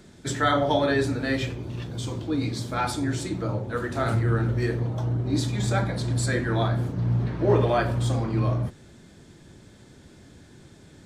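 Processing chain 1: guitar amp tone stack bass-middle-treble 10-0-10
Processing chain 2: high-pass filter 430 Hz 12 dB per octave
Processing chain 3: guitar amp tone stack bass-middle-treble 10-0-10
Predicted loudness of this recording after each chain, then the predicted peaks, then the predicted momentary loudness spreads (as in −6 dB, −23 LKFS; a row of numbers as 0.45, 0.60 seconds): −36.5, −30.0, −36.5 LKFS; −17.5, −10.0, −17.5 dBFS; 8, 15, 8 LU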